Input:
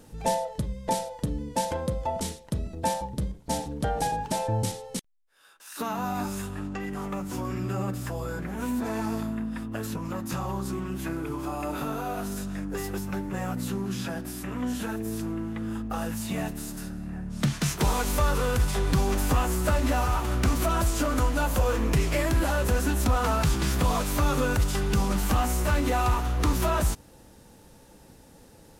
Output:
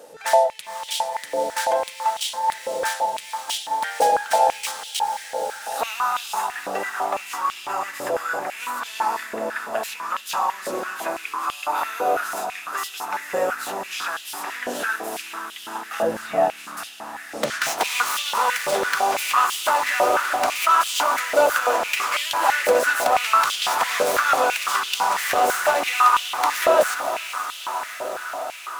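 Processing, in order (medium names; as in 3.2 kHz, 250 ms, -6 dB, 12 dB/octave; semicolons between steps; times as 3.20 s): tracing distortion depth 0.054 ms; in parallel at -10.5 dB: wavefolder -22 dBFS; 16.02–16.77 s: on the sum: tilt EQ -4 dB/octave; echo that smears into a reverb 498 ms, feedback 77%, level -9 dB; on a send at -19 dB: reverberation RT60 0.75 s, pre-delay 78 ms; on the sum: step-sequenced high-pass 6 Hz 550–3100 Hz; trim +3.5 dB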